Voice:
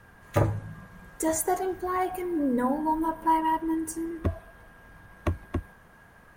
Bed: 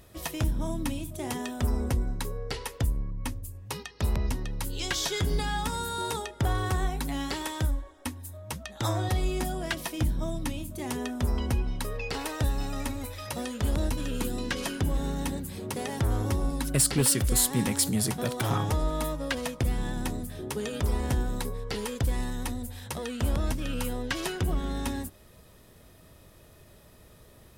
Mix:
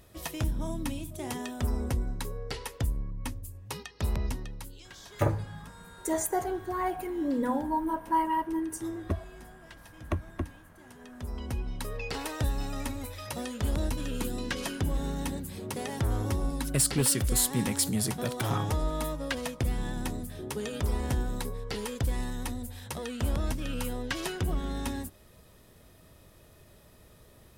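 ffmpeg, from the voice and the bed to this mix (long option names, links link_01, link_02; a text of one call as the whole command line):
ffmpeg -i stem1.wav -i stem2.wav -filter_complex "[0:a]adelay=4850,volume=-3dB[link_01];[1:a]volume=15.5dB,afade=type=out:start_time=4.25:duration=0.59:silence=0.133352,afade=type=in:start_time=10.97:duration=1.03:silence=0.125893[link_02];[link_01][link_02]amix=inputs=2:normalize=0" out.wav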